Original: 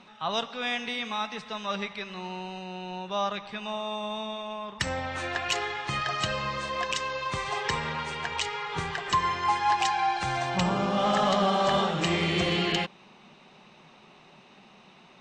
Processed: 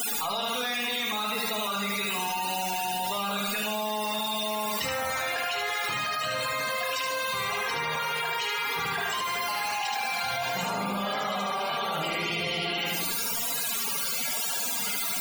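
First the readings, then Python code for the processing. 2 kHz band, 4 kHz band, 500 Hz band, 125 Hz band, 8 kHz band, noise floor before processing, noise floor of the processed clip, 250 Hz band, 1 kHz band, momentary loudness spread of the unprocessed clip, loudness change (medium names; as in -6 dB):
+2.5 dB, +2.5 dB, -2.0 dB, -7.5 dB, +9.5 dB, -55 dBFS, -30 dBFS, -4.5 dB, -1.5 dB, 11 LU, +0.5 dB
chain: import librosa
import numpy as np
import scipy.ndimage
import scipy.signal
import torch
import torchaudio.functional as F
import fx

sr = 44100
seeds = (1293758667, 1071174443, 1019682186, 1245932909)

y = fx.rattle_buzz(x, sr, strikes_db=-28.0, level_db=-26.0)
y = 10.0 ** (-29.5 / 20.0) * np.tanh(y / 10.0 ** (-29.5 / 20.0))
y = fx.bass_treble(y, sr, bass_db=-3, treble_db=3)
y = fx.quant_dither(y, sr, seeds[0], bits=6, dither='triangular')
y = scipy.signal.sosfilt(scipy.signal.butter(4, 61.0, 'highpass', fs=sr, output='sos'), y)
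y = fx.notch(y, sr, hz=1800.0, q=22.0)
y = np.sign(y) * np.maximum(np.abs(y) - 10.0 ** (-48.5 / 20.0), 0.0)
y = fx.room_shoebox(y, sr, seeds[1], volume_m3=700.0, walls='furnished', distance_m=1.7)
y = fx.spec_topn(y, sr, count=64)
y = fx.low_shelf(y, sr, hz=340.0, db=-10.5)
y = fx.echo_feedback(y, sr, ms=75, feedback_pct=33, wet_db=-3)
y = fx.env_flatten(y, sr, amount_pct=100)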